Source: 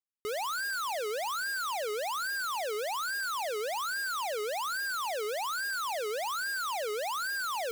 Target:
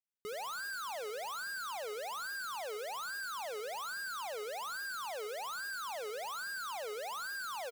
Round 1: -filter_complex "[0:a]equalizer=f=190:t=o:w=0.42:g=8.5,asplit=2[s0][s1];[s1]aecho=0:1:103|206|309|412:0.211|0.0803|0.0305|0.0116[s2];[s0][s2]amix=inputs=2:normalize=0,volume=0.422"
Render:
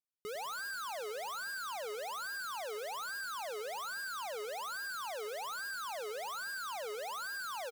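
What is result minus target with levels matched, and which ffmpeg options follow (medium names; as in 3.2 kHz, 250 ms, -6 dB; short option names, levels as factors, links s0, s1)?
echo 29 ms late
-filter_complex "[0:a]equalizer=f=190:t=o:w=0.42:g=8.5,asplit=2[s0][s1];[s1]aecho=0:1:74|148|222|296:0.211|0.0803|0.0305|0.0116[s2];[s0][s2]amix=inputs=2:normalize=0,volume=0.422"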